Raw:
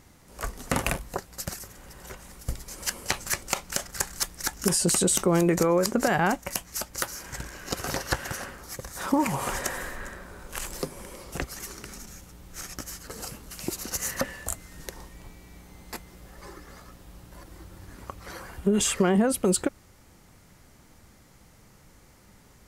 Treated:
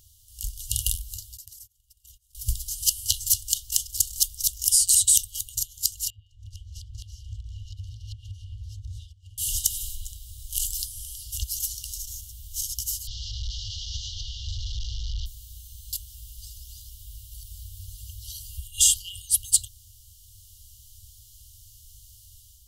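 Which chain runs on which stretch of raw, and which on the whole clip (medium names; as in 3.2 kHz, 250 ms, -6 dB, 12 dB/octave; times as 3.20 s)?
1.37–2.35 s: gate -43 dBFS, range -27 dB + compression 3:1, threshold -56 dBFS
6.10–9.38 s: low-pass 1.9 kHz + peaking EQ 98 Hz +14.5 dB 0.97 oct + compression 16:1, threshold -35 dBFS
13.07–15.26 s: one-bit delta coder 32 kbps, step -26 dBFS + low-pass 3.8 kHz + peaking EQ 1.1 kHz -11 dB 2.8 oct
whole clip: FFT band-reject 110–2800 Hz; treble shelf 11 kHz +12 dB; level rider gain up to 6 dB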